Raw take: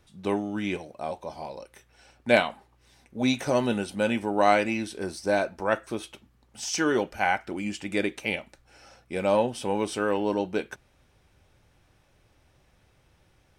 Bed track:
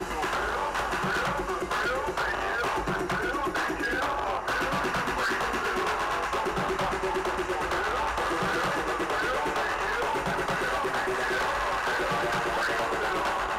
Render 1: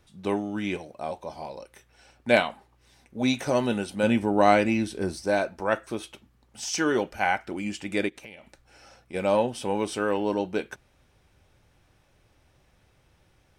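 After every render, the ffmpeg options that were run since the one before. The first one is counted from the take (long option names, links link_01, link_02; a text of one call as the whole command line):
ffmpeg -i in.wav -filter_complex "[0:a]asettb=1/sr,asplit=3[link_01][link_02][link_03];[link_01]atrim=end=4.034[link_04];[link_02]atrim=start=4.03:end=5.23,asetpts=PTS-STARTPTS,afade=type=in:duration=0.004:curve=qsin,afade=type=out:start_time=1.196:duration=0.004:curve=qsin,lowshelf=frequency=320:gain=8[link_05];[link_03]atrim=start=5.226[link_06];[link_04][link_05]acrossfade=duration=0.004:curve1=hsin:curve2=qsin[link_07];[link_07][link_06]acrossfade=duration=0.004:curve1=qsin:curve2=hsin,asplit=3[link_08][link_09][link_10];[link_08]afade=type=out:start_time=8.08:duration=0.02[link_11];[link_09]acompressor=threshold=-41dB:ratio=6:attack=3.2:release=140:knee=1:detection=peak,afade=type=in:start_time=8.08:duration=0.02,afade=type=out:start_time=9.13:duration=0.02[link_12];[link_10]afade=type=in:start_time=9.13:duration=0.02[link_13];[link_11][link_12][link_13]amix=inputs=3:normalize=0" out.wav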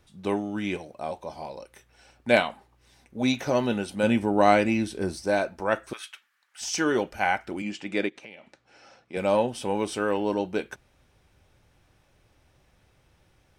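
ffmpeg -i in.wav -filter_complex "[0:a]asettb=1/sr,asplit=3[link_01][link_02][link_03];[link_01]atrim=end=3.324[link_04];[link_02]atrim=start=3.32:end=3.84,asetpts=PTS-STARTPTS,afade=type=in:duration=0.004:curve=qsin,afade=type=out:start_time=0.516:duration=0.004:curve=qsin,equalizer=frequency=8700:width_type=o:width=0.37:gain=-11.5[link_05];[link_03]atrim=start=3.836[link_06];[link_04][link_05]acrossfade=duration=0.004:curve1=hsin:curve2=qsin[link_07];[link_07][link_06]acrossfade=duration=0.004:curve1=qsin:curve2=hsin,asettb=1/sr,asplit=3[link_08][link_09][link_10];[link_08]atrim=end=5.934[link_11];[link_09]atrim=start=5.93:end=6.61,asetpts=PTS-STARTPTS,afade=type=in:duration=0.004:curve=qsin,afade=type=out:start_time=0.676:duration=0.004:curve=qsin,highpass=frequency=1600:width_type=q:width=2.8[link_12];[link_10]atrim=start=6.606[link_13];[link_11][link_12]acrossfade=duration=0.004:curve1=hsin:curve2=qsin[link_14];[link_14][link_13]acrossfade=duration=0.004:curve1=qsin:curve2=hsin,asettb=1/sr,asplit=3[link_15][link_16][link_17];[link_15]atrim=end=7.624[link_18];[link_16]atrim=start=7.62:end=9.17,asetpts=PTS-STARTPTS,afade=type=in:duration=0.004:curve=qsin,afade=type=out:start_time=1.546:duration=0.004:curve=qsin,highpass=160,lowpass=5600[link_19];[link_17]atrim=start=9.166[link_20];[link_18][link_19]acrossfade=duration=0.004:curve1=hsin:curve2=qsin[link_21];[link_21][link_20]acrossfade=duration=0.004:curve1=qsin:curve2=hsin" out.wav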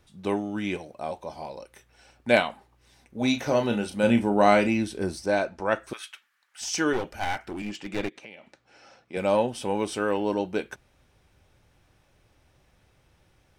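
ffmpeg -i in.wav -filter_complex "[0:a]asettb=1/sr,asplit=3[link_01][link_02][link_03];[link_01]atrim=end=3.184[link_04];[link_02]atrim=start=3.18:end=4.69,asetpts=PTS-STARTPTS,afade=type=in:duration=0.004:curve=qsin,afade=type=out:start_time=1.506:duration=0.004:curve=qsin,asplit=2[link_05][link_06];[link_06]adelay=34,volume=-8dB[link_07];[link_05][link_07]amix=inputs=2:normalize=0,atrim=end_sample=66591[link_08];[link_03]atrim=start=4.686[link_09];[link_04][link_08]acrossfade=duration=0.004:curve1=hsin:curve2=qsin[link_10];[link_10][link_09]acrossfade=duration=0.004:curve1=qsin:curve2=hsin,asettb=1/sr,asplit=3[link_11][link_12][link_13];[link_11]atrim=end=5.264[link_14];[link_12]atrim=start=5.26:end=5.81,asetpts=PTS-STARTPTS,afade=type=in:duration=0.004:curve=qsin,afade=type=out:start_time=0.546:duration=0.004:curve=qsin,lowpass=7900[link_15];[link_13]atrim=start=5.806[link_16];[link_14][link_15]acrossfade=duration=0.004:curve1=hsin:curve2=qsin[link_17];[link_17][link_16]acrossfade=duration=0.004:curve1=qsin:curve2=hsin,asettb=1/sr,asplit=3[link_18][link_19][link_20];[link_18]atrim=end=6.934[link_21];[link_19]atrim=start=6.93:end=8.13,asetpts=PTS-STARTPTS,afade=type=in:duration=0.004:curve=qsin,afade=type=out:start_time=1.196:duration=0.004:curve=qsin,aeval=exprs='clip(val(0),-1,0.0237)':channel_layout=same[link_22];[link_20]atrim=start=8.126[link_23];[link_21][link_22]acrossfade=duration=0.004:curve1=hsin:curve2=qsin[link_24];[link_24][link_23]acrossfade=duration=0.004:curve1=qsin:curve2=hsin" out.wav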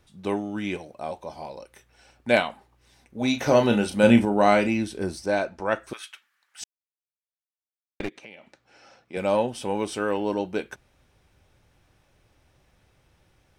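ffmpeg -i in.wav -filter_complex "[0:a]asplit=5[link_01][link_02][link_03][link_04][link_05];[link_01]atrim=end=3.412[link_06];[link_02]atrim=start=3.408:end=4.252,asetpts=PTS-STARTPTS,volume=5dB[link_07];[link_03]atrim=start=4.248:end=6.64,asetpts=PTS-STARTPTS,afade=type=out:start_time=2.388:duration=0.004:curve=hsin[link_08];[link_04]atrim=start=6.64:end=8,asetpts=PTS-STARTPTS,volume=0[link_09];[link_05]atrim=start=8,asetpts=PTS-STARTPTS,afade=type=in:duration=0.004:curve=hsin[link_10];[link_06][link_07]acrossfade=duration=0.004:curve1=hsin:curve2=hsin[link_11];[link_08][link_09][link_10]concat=n=3:v=0:a=1[link_12];[link_11][link_12]acrossfade=duration=0.004:curve1=hsin:curve2=hsin" out.wav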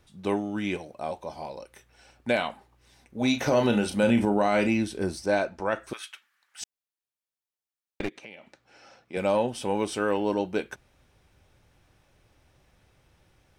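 ffmpeg -i in.wav -af "alimiter=limit=-13dB:level=0:latency=1:release=68" out.wav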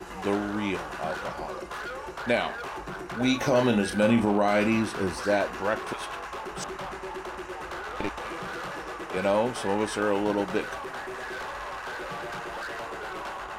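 ffmpeg -i in.wav -i bed.wav -filter_complex "[1:a]volume=-8dB[link_01];[0:a][link_01]amix=inputs=2:normalize=0" out.wav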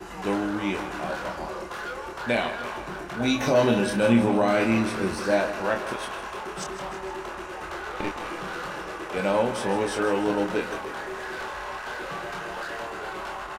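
ffmpeg -i in.wav -filter_complex "[0:a]asplit=2[link_01][link_02];[link_02]adelay=26,volume=-5dB[link_03];[link_01][link_03]amix=inputs=2:normalize=0,asplit=2[link_04][link_05];[link_05]aecho=0:1:157|314|471|628|785|942|1099:0.251|0.148|0.0874|0.0516|0.0304|0.018|0.0106[link_06];[link_04][link_06]amix=inputs=2:normalize=0" out.wav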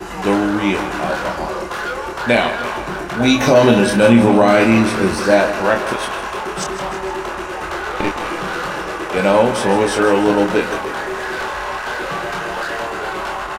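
ffmpeg -i in.wav -af "volume=10.5dB,alimiter=limit=-1dB:level=0:latency=1" out.wav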